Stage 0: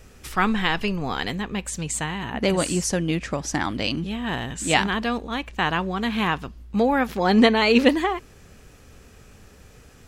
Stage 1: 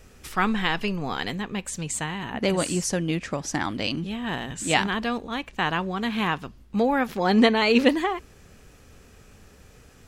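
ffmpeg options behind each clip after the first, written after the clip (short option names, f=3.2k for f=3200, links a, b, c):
-af "bandreject=f=60:t=h:w=6,bandreject=f=120:t=h:w=6,volume=-2dB"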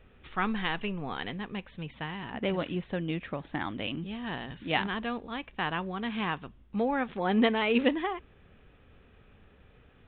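-af "aresample=8000,aresample=44100,volume=-6.5dB"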